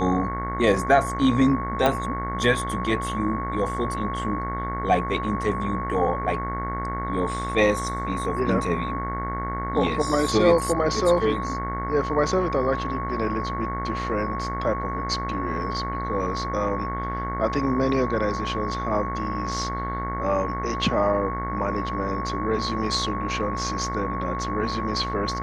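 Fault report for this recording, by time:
buzz 60 Hz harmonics 37 -31 dBFS
whine 1.1 kHz -29 dBFS
1.86 s: pop -9 dBFS

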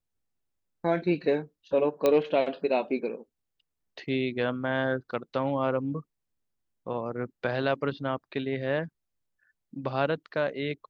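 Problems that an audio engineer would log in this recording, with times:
2.06 s: pop -11 dBFS

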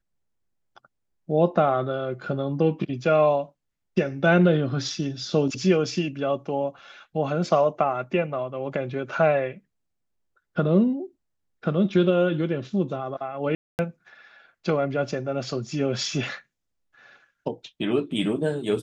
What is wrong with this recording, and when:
13.55–13.79 s: dropout 239 ms

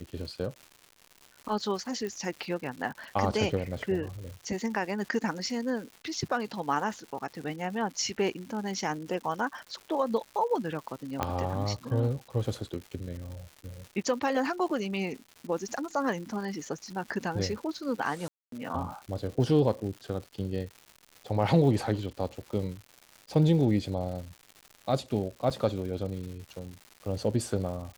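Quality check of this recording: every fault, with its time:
crackle 250 per s -39 dBFS
2.07 s: pop -23 dBFS
11.23 s: pop -13 dBFS
18.28–18.52 s: dropout 243 ms
25.50–25.51 s: dropout 6 ms

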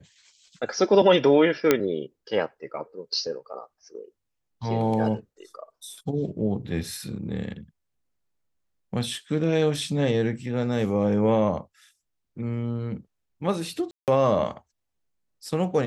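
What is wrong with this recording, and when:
1.71 s: pop -4 dBFS
13.91–14.08 s: dropout 168 ms

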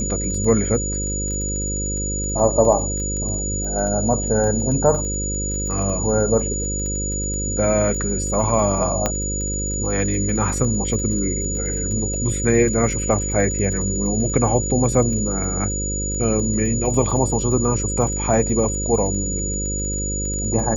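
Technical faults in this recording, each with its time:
buzz 50 Hz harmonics 11 -26 dBFS
crackle 19 per s -27 dBFS
whine 6.9 kHz -25 dBFS
9.06 s: pop -5 dBFS

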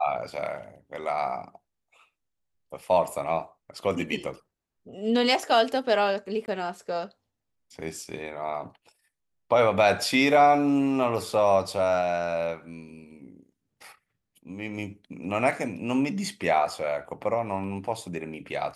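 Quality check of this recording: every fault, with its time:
6.46–6.48 s: dropout 19 ms

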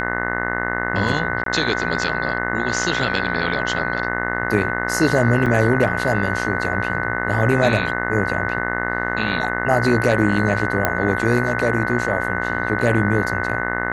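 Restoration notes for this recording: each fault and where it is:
buzz 60 Hz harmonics 35 -25 dBFS
whine 1.5 kHz -26 dBFS
1.44–1.46 s: dropout 23 ms
5.46–5.47 s: dropout 5.6 ms
10.85 s: pop -3 dBFS

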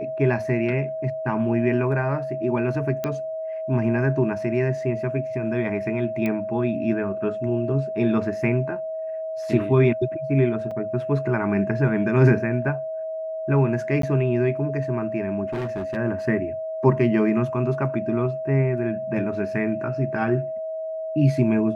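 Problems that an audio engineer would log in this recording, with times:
whine 640 Hz -27 dBFS
3.04 s: pop -13 dBFS
6.26 s: pop -14 dBFS
10.71 s: dropout 4.2 ms
14.02–14.03 s: dropout 13 ms
15.53–15.97 s: clipped -24 dBFS

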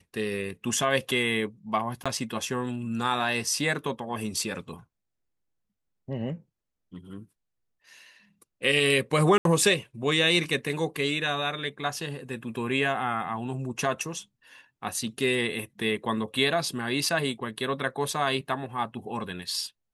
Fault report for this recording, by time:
2.04–2.06 s: dropout 16 ms
9.38–9.45 s: dropout 72 ms

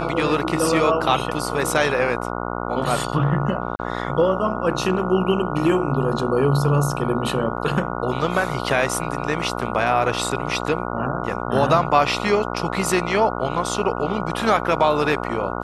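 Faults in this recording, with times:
buzz 60 Hz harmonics 24 -27 dBFS
3.76–3.79 s: dropout 30 ms
7.57–7.58 s: dropout 6.2 ms

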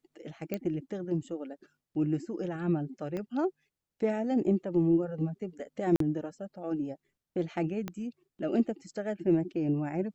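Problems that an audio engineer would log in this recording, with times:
0.54 s: pop -19 dBFS
3.17 s: pop -25 dBFS
5.96–6.00 s: dropout 43 ms
7.88 s: pop -21 dBFS

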